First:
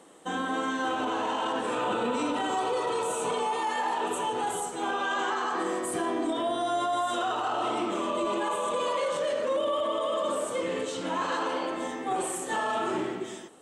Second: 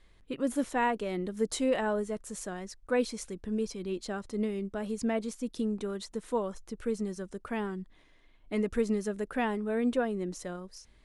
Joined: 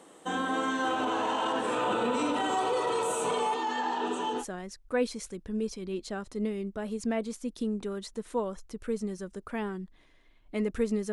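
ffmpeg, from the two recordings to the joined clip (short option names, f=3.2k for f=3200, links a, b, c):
-filter_complex "[0:a]asettb=1/sr,asplit=3[a][b][c];[a]atrim=end=3.544[d];[b]atrim=start=3.54:end=4.45,asetpts=PTS-STARTPTS,afade=t=in:d=0.004:c=qsin,afade=t=out:st=0.906:d=0.004:c=qsin,highpass=f=140:w=0.5412,highpass=f=140:w=1.3066,equalizer=f=160:t=q:w=4:g=-8,equalizer=f=260:t=q:w=4:g=8,equalizer=f=590:t=q:w=4:g=-8,equalizer=f=1.1k:t=q:w=4:g=-5,equalizer=f=2.2k:t=q:w=4:g=-8,lowpass=f=6.5k:w=0.5412,lowpass=f=6.5k:w=1.3066[e];[c]atrim=start=4.446[f];[d][e]acrossfade=d=0.004:c1=hsin:c2=qsin[g];[g][f]acrossfade=d=0.004:c1=qsin:c2=hsin,apad=whole_dur=11.12,atrim=end=11.12,atrim=end=4.45,asetpts=PTS-STARTPTS[h];[1:a]atrim=start=2.35:end=9.1,asetpts=PTS-STARTPTS[i];[h][i]acrossfade=d=0.08:c1=tri:c2=tri"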